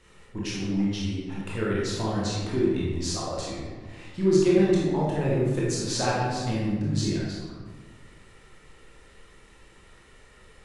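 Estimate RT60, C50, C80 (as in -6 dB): 1.5 s, -2.0 dB, 1.0 dB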